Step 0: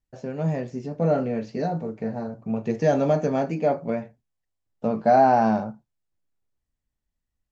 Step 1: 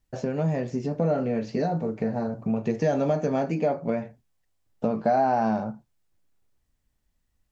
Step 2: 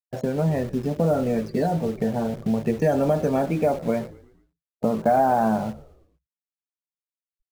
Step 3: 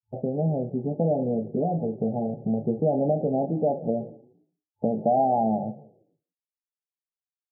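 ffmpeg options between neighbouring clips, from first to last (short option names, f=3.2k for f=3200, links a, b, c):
-af "acompressor=threshold=-35dB:ratio=2.5,volume=8.5dB"
-filter_complex "[0:a]afftfilt=real='re*gte(hypot(re,im),0.0112)':imag='im*gte(hypot(re,im),0.0112)':win_size=1024:overlap=0.75,asplit=2[a][b];[b]acrusher=bits=5:mix=0:aa=0.000001,volume=-8dB[c];[a][c]amix=inputs=2:normalize=0,asplit=5[d][e][f][g][h];[e]adelay=114,afreqshift=-70,volume=-19dB[i];[f]adelay=228,afreqshift=-140,volume=-25.2dB[j];[g]adelay=342,afreqshift=-210,volume=-31.4dB[k];[h]adelay=456,afreqshift=-280,volume=-37.6dB[l];[d][i][j][k][l]amix=inputs=5:normalize=0"
-filter_complex "[0:a]asplit=2[a][b];[b]adelay=174.9,volume=-23dB,highshelf=f=4k:g=-3.94[c];[a][c]amix=inputs=2:normalize=0,afftfilt=real='re*between(b*sr/4096,100,870)':imag='im*between(b*sr/4096,100,870)':win_size=4096:overlap=0.75,volume=-2.5dB" -ar 16000 -c:a libvorbis -b:a 48k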